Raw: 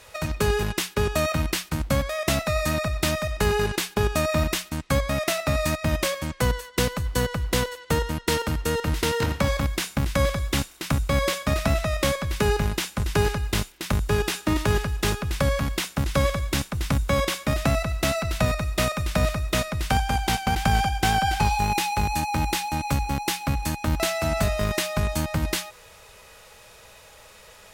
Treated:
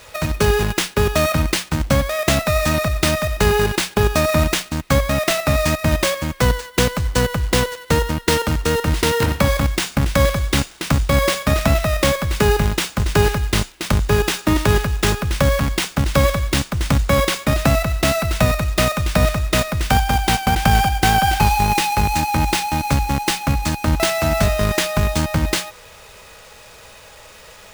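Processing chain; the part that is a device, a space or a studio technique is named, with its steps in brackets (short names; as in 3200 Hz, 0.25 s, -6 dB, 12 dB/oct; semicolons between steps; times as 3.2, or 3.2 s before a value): early companding sampler (sample-rate reducer 14000 Hz, jitter 0%; companded quantiser 6-bit); gain +6.5 dB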